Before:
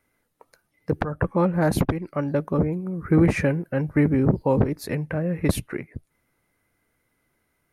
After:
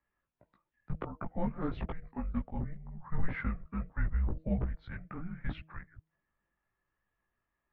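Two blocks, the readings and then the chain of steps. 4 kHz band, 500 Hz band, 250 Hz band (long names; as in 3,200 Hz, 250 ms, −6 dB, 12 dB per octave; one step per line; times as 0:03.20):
below −15 dB, −21.0 dB, −16.5 dB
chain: single-sideband voice off tune −330 Hz 240–3,500 Hz
multi-voice chorus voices 6, 1.4 Hz, delay 18 ms, depth 3 ms
hum removal 158.8 Hz, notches 4
level −8 dB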